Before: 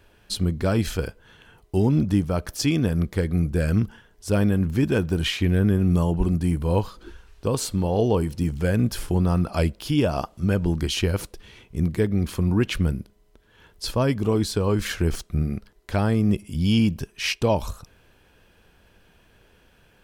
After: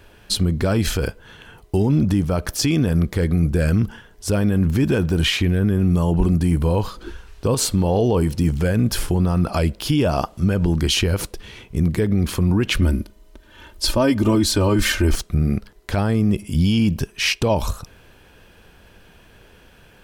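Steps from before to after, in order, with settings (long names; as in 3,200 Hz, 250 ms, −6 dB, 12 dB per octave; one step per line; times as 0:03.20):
0:12.81–0:15.15: comb filter 3.3 ms, depth 83%
brickwall limiter −17 dBFS, peak gain reduction 8 dB
level +8 dB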